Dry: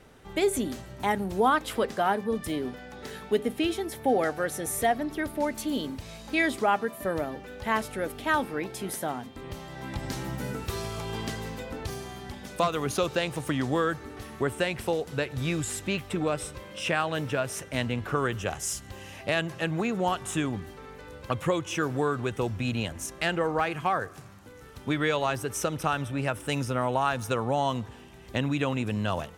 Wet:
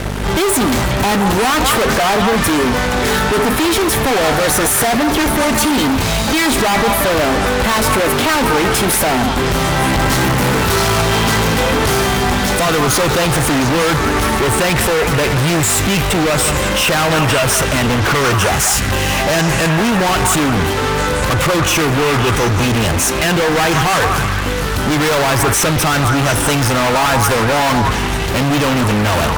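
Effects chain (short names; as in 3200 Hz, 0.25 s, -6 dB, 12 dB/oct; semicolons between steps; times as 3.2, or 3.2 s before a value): hum 50 Hz, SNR 20 dB; fuzz box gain 48 dB, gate -52 dBFS; delay with a stepping band-pass 0.179 s, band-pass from 1100 Hz, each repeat 0.7 oct, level -1 dB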